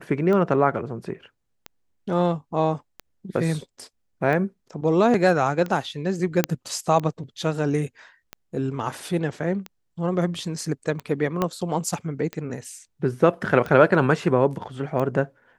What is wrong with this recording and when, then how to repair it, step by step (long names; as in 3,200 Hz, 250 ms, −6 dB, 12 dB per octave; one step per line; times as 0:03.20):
scratch tick 45 rpm −17 dBFS
0:06.44: click −3 dBFS
0:11.42: click −10 dBFS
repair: click removal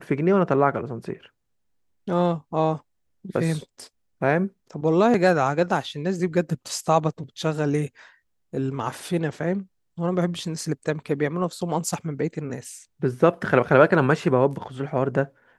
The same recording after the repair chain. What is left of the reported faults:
0:11.42: click